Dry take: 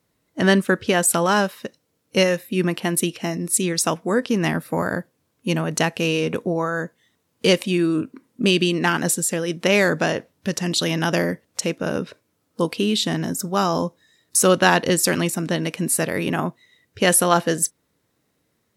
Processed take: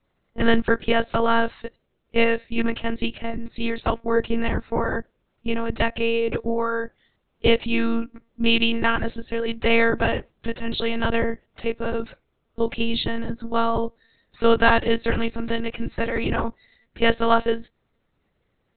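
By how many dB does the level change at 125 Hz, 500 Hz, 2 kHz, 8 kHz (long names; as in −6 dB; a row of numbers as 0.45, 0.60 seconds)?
−7.5 dB, −1.0 dB, −1.0 dB, below −40 dB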